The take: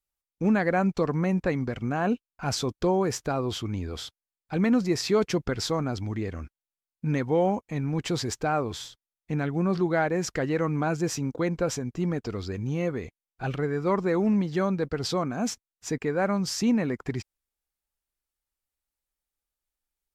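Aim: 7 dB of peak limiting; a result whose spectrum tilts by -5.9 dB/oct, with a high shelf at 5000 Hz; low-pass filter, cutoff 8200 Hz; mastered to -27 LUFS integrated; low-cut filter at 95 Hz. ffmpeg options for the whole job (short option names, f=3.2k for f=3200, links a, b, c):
-af "highpass=95,lowpass=8.2k,highshelf=f=5k:g=-4.5,volume=3dB,alimiter=limit=-16.5dB:level=0:latency=1"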